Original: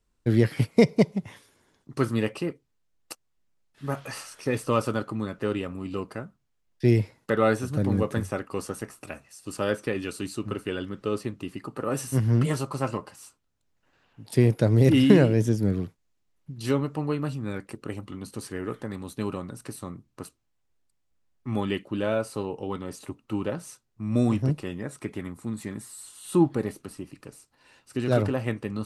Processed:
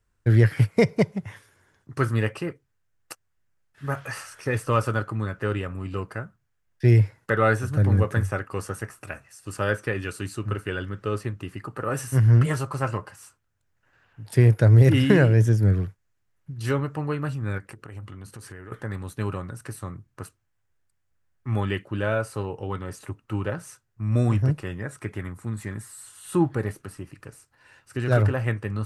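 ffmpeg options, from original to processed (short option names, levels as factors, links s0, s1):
-filter_complex "[0:a]asettb=1/sr,asplit=3[s0][s1][s2];[s0]atrim=end=17.584[s3];[s1]atrim=start=17.58:end=18.72,asetpts=PTS-STARTPTS,afade=t=in:d=0.004:c=qsin,afade=t=out:st=1.136:d=0.004:c=qsin,acompressor=threshold=0.0126:ratio=10:attack=3.2:release=140:knee=1:detection=peak[s4];[s2]atrim=start=18.716[s5];[s3][s4]acrossfade=d=0.004:c1=hsin:c2=qsin[s6];[s6][s5]acrossfade=d=0.004:c1=qsin:c2=hsin,equalizer=f=100:t=o:w=0.67:g=10,equalizer=f=250:t=o:w=0.67:g=-5,equalizer=f=1600:t=o:w=0.67:g=8,equalizer=f=4000:t=o:w=0.67:g=-4"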